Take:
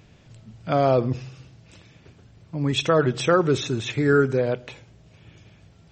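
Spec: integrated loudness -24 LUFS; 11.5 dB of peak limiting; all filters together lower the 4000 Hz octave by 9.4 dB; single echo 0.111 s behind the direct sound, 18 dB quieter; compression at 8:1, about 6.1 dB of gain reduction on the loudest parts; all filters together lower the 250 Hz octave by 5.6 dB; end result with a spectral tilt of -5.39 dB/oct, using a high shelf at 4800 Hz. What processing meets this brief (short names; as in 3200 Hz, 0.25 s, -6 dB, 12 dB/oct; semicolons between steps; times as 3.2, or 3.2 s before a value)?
bell 250 Hz -8 dB; bell 4000 Hz -8 dB; high shelf 4800 Hz -8.5 dB; compressor 8:1, threshold -22 dBFS; limiter -23 dBFS; echo 0.111 s -18 dB; gain +9 dB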